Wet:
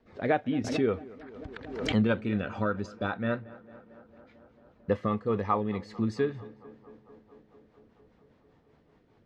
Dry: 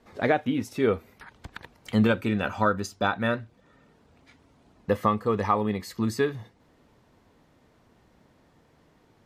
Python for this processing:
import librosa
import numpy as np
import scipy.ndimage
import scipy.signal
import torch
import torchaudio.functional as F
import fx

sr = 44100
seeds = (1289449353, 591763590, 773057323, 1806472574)

p1 = fx.high_shelf(x, sr, hz=8700.0, db=-11.0, at=(3.07, 4.95))
p2 = fx.rotary(p1, sr, hz=5.0)
p3 = fx.air_absorb(p2, sr, metres=140.0)
p4 = p3 + fx.echo_tape(p3, sr, ms=224, feedback_pct=86, wet_db=-19, lp_hz=2300.0, drive_db=15.0, wow_cents=6, dry=0)
p5 = fx.pre_swell(p4, sr, db_per_s=59.0, at=(0.64, 1.96))
y = F.gain(torch.from_numpy(p5), -1.5).numpy()